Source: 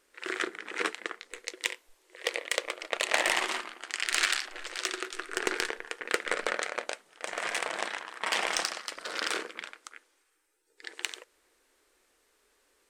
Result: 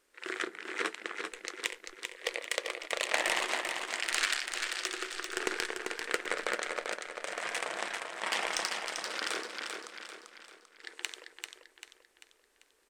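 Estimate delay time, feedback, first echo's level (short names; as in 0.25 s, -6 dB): 0.392 s, 44%, -5.5 dB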